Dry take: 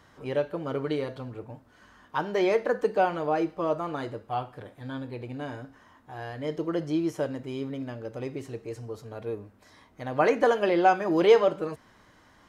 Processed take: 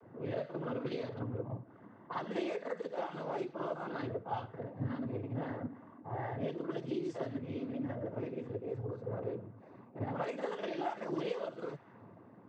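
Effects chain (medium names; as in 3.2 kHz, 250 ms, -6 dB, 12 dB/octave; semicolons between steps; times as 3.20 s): dynamic bell 3.6 kHz, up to +6 dB, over -55 dBFS, Q 3.3; level-controlled noise filter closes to 530 Hz, open at -22 dBFS; compression 10:1, threshold -42 dBFS, peak gain reduction 28 dB; on a send: reverse echo 48 ms -6 dB; on the sum: noise-vocoded speech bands 16; trim +6 dB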